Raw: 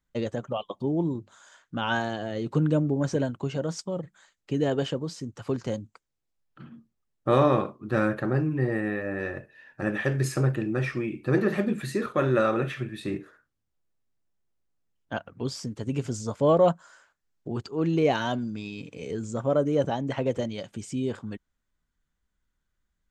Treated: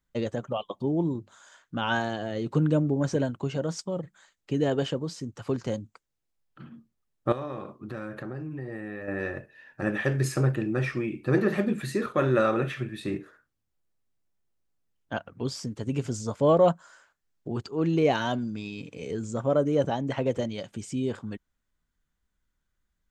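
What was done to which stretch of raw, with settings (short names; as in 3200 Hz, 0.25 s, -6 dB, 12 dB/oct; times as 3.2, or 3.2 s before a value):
7.32–9.08 compressor 4:1, threshold -34 dBFS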